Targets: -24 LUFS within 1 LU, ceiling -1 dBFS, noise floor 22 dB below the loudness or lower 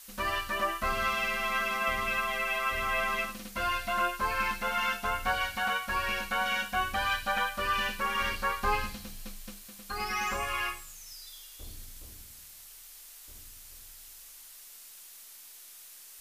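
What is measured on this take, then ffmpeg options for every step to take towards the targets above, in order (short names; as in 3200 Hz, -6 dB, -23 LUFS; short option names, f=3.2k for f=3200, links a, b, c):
noise floor -50 dBFS; noise floor target -52 dBFS; loudness -30.0 LUFS; peak -17.0 dBFS; loudness target -24.0 LUFS
-> -af "afftdn=nr=6:nf=-50"
-af "volume=6dB"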